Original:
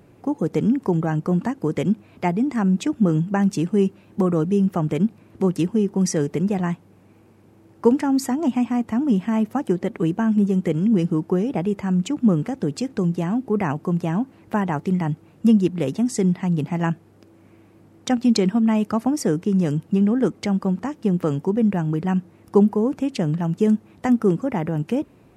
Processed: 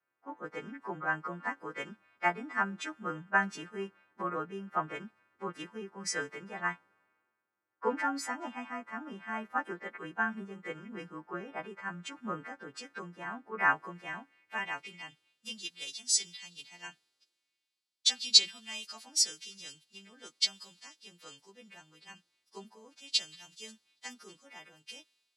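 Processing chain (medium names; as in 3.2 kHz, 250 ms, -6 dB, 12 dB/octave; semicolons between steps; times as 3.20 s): partials quantised in pitch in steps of 2 st; band-pass sweep 1.5 kHz -> 4 kHz, 13.56–15.68 s; three bands expanded up and down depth 70%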